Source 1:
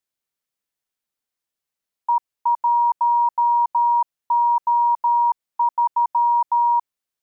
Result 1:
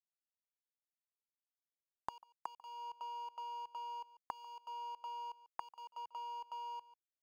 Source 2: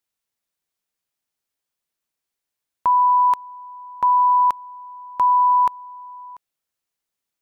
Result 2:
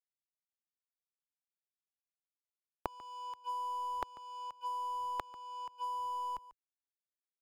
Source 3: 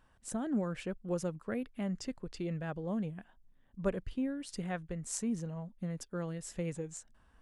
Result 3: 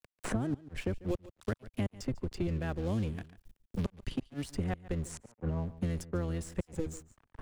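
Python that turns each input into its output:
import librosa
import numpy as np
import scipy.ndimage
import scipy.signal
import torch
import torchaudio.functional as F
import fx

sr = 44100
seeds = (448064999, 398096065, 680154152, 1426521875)

y = fx.octave_divider(x, sr, octaves=1, level_db=0.0)
y = fx.low_shelf(y, sr, hz=71.0, db=6.0)
y = fx.gate_flip(y, sr, shuts_db=-23.0, range_db=-29)
y = fx.dynamic_eq(y, sr, hz=360.0, q=2.7, threshold_db=-53.0, ratio=4.0, max_db=4)
y = np.sign(y) * np.maximum(np.abs(y) - 10.0 ** (-53.0 / 20.0), 0.0)
y = y + 10.0 ** (-20.5 / 20.0) * np.pad(y, (int(143 * sr / 1000.0), 0))[:len(y)]
y = fx.band_squash(y, sr, depth_pct=100)
y = F.gain(torch.from_numpy(y), 1.0).numpy()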